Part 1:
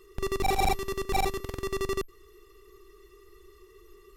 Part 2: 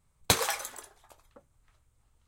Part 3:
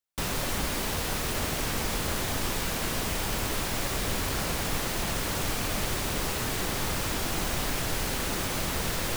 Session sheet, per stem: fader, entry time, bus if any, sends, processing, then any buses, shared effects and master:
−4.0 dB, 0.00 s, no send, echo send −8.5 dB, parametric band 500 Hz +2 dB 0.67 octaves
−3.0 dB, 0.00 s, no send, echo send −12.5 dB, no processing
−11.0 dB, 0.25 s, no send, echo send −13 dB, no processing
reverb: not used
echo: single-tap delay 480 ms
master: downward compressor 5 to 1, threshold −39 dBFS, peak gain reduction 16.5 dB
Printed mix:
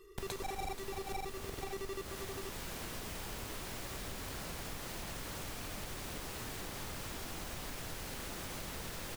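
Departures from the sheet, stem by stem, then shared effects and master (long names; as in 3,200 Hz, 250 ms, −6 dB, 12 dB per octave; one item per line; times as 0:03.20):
stem 2 −3.0 dB → −11.0 dB
stem 3: entry 0.25 s → 0.00 s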